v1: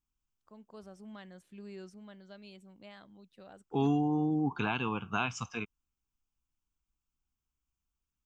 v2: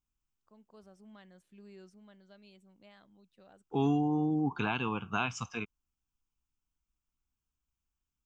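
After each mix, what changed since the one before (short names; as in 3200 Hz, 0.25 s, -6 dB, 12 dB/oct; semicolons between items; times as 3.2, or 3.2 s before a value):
first voice -6.5 dB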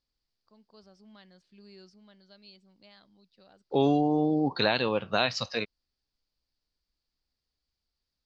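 second voice: remove fixed phaser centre 2800 Hz, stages 8; master: add synth low-pass 4700 Hz, resonance Q 6.9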